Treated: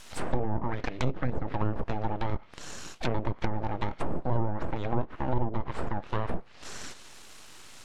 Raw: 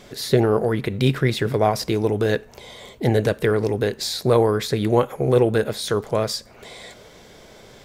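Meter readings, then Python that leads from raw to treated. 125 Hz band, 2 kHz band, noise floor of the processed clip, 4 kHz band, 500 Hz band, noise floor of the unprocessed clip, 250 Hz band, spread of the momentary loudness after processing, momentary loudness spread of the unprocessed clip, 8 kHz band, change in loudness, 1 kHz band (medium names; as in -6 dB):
-9.5 dB, -11.0 dB, -49 dBFS, -16.5 dB, -16.5 dB, -47 dBFS, -11.0 dB, 13 LU, 10 LU, -12.5 dB, -12.5 dB, -6.5 dB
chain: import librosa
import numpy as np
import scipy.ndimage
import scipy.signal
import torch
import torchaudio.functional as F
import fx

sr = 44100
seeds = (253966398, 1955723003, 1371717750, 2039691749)

y = fx.weighting(x, sr, curve='D')
y = np.abs(y)
y = fx.env_lowpass_down(y, sr, base_hz=590.0, full_db=-14.5)
y = y * librosa.db_to_amplitude(-5.5)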